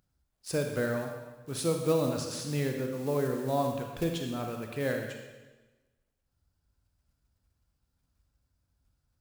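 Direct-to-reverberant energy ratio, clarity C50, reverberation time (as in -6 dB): 3.0 dB, 4.0 dB, 1.2 s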